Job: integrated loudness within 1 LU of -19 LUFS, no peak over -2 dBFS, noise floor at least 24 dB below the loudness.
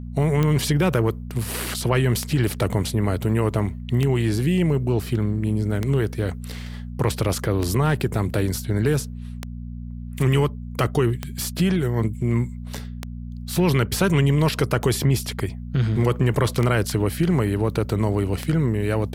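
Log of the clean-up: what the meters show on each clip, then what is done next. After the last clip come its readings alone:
clicks found 11; hum 60 Hz; highest harmonic 240 Hz; hum level -30 dBFS; loudness -22.5 LUFS; peak level -7.0 dBFS; loudness target -19.0 LUFS
-> de-click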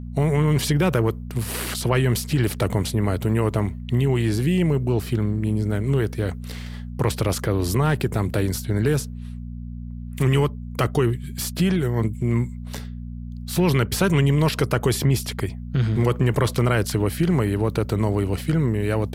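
clicks found 0; hum 60 Hz; highest harmonic 240 Hz; hum level -30 dBFS
-> de-hum 60 Hz, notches 4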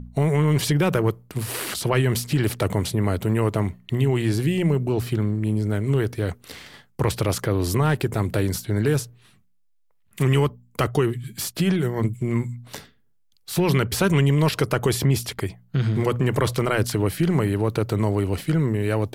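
hum not found; loudness -23.0 LUFS; peak level -7.0 dBFS; loudness target -19.0 LUFS
-> trim +4 dB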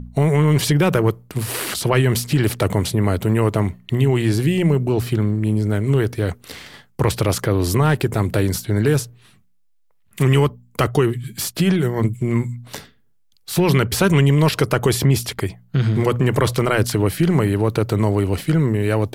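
loudness -19.0 LUFS; peak level -3.0 dBFS; noise floor -57 dBFS

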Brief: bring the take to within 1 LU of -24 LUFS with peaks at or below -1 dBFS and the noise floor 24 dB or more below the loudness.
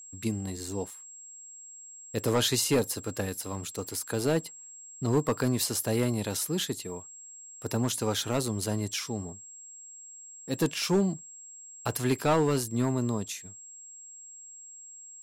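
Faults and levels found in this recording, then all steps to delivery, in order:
clipped samples 0.5%; clipping level -18.0 dBFS; steady tone 7.6 kHz; tone level -45 dBFS; loudness -29.5 LUFS; peak level -18.0 dBFS; loudness target -24.0 LUFS
-> clip repair -18 dBFS; band-stop 7.6 kHz, Q 30; trim +5.5 dB

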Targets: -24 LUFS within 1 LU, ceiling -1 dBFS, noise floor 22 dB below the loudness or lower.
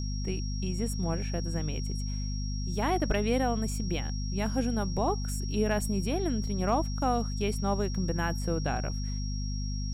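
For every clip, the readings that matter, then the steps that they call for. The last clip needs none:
hum 50 Hz; highest harmonic 250 Hz; hum level -30 dBFS; steady tone 5.6 kHz; tone level -42 dBFS; loudness -31.0 LUFS; peak level -15.0 dBFS; loudness target -24.0 LUFS
-> hum notches 50/100/150/200/250 Hz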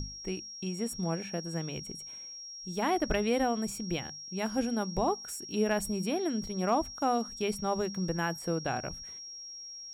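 hum not found; steady tone 5.6 kHz; tone level -42 dBFS
-> band-stop 5.6 kHz, Q 30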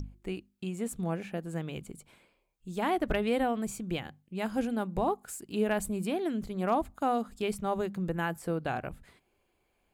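steady tone not found; loudness -33.0 LUFS; peak level -17.5 dBFS; loudness target -24.0 LUFS
-> trim +9 dB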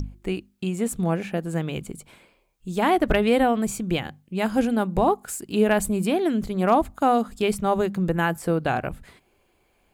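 loudness -24.0 LUFS; peak level -8.5 dBFS; noise floor -66 dBFS

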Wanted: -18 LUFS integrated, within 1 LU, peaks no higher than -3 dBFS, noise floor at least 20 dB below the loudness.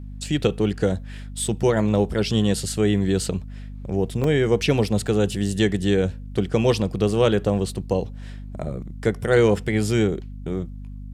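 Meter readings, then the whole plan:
dropouts 3; longest dropout 2.4 ms; hum 50 Hz; highest harmonic 250 Hz; hum level -33 dBFS; loudness -22.5 LUFS; peak level -4.5 dBFS; loudness target -18.0 LUFS
-> interpolate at 0.44/4.24/5.08 s, 2.4 ms; hum notches 50/100/150/200/250 Hz; trim +4.5 dB; peak limiter -3 dBFS

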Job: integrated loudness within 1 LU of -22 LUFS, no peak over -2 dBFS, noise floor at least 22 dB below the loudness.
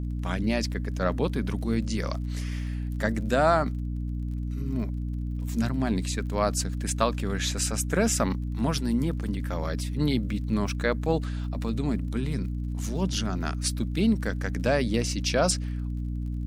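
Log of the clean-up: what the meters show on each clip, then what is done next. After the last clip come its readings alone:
tick rate 37 per s; hum 60 Hz; highest harmonic 300 Hz; hum level -28 dBFS; loudness -28.0 LUFS; peak level -7.5 dBFS; loudness target -22.0 LUFS
-> de-click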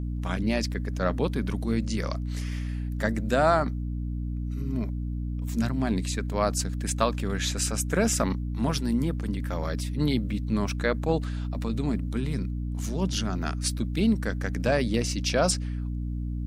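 tick rate 0.12 per s; hum 60 Hz; highest harmonic 300 Hz; hum level -28 dBFS
-> de-hum 60 Hz, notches 5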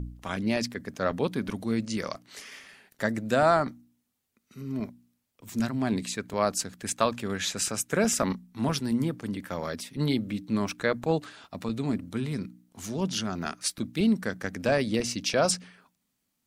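hum not found; loudness -29.0 LUFS; peak level -8.0 dBFS; loudness target -22.0 LUFS
-> trim +7 dB; peak limiter -2 dBFS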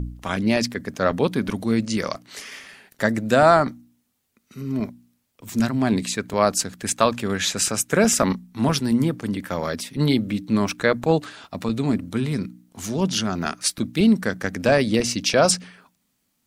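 loudness -22.0 LUFS; peak level -2.0 dBFS; noise floor -71 dBFS

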